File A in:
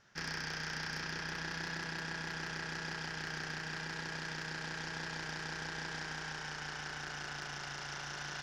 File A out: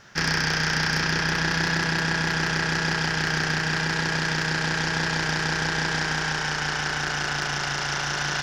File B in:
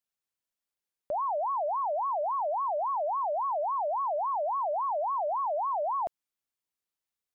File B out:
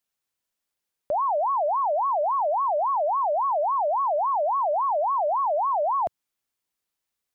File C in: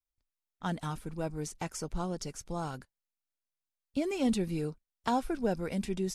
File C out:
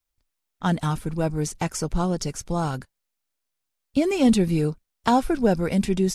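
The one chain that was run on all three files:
dynamic equaliser 110 Hz, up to +4 dB, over −51 dBFS, Q 0.84
loudness normalisation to −24 LKFS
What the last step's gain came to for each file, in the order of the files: +16.0, +6.0, +9.5 decibels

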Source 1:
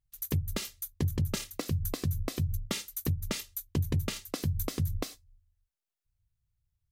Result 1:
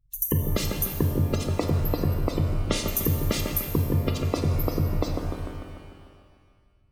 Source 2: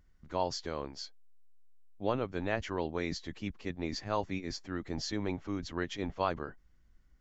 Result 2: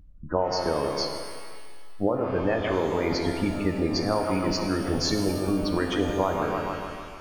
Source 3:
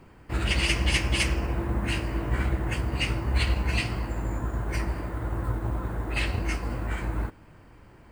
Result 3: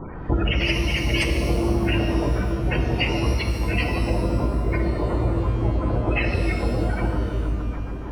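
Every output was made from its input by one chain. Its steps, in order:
delay with a low-pass on its return 149 ms, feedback 60%, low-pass 3,000 Hz, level −9 dB
dynamic equaliser 520 Hz, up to +4 dB, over −45 dBFS, Q 1.1
downward compressor 6 to 1, threshold −35 dBFS
gate on every frequency bin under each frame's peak −20 dB strong
reverb with rising layers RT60 1.6 s, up +12 semitones, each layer −8 dB, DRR 4.5 dB
normalise the peak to −9 dBFS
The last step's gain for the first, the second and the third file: +13.0, +13.5, +17.0 decibels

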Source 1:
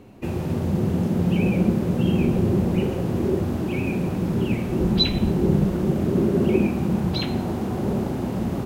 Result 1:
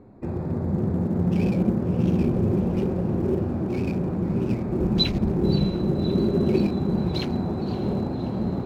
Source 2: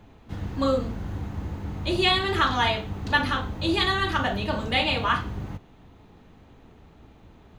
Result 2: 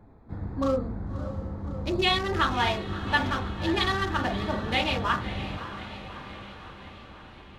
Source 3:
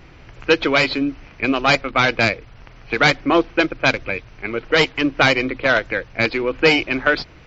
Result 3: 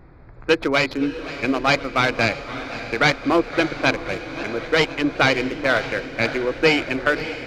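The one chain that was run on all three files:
adaptive Wiener filter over 15 samples
feedback delay with all-pass diffusion 602 ms, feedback 62%, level −13 dB
feedback echo with a swinging delay time 523 ms, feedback 64%, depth 217 cents, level −18 dB
level −2 dB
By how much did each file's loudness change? −1.5, −3.0, −2.5 LU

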